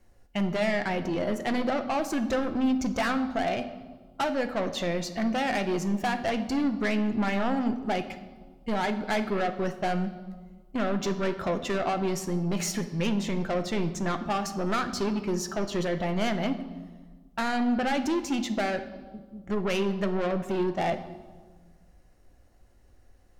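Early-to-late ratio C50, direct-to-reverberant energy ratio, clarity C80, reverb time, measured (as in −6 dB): 11.5 dB, 7.5 dB, 13.5 dB, 1.5 s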